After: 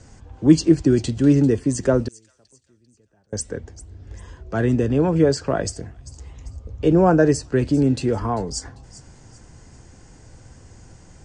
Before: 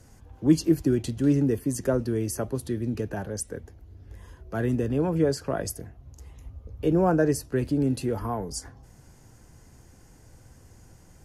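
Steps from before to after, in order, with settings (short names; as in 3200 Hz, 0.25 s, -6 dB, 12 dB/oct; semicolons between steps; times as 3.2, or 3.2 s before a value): 2.08–3.33 flipped gate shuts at -30 dBFS, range -36 dB; elliptic low-pass 8300 Hz, stop band 40 dB; thin delay 0.394 s, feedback 36%, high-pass 4200 Hz, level -15 dB; gain +7.5 dB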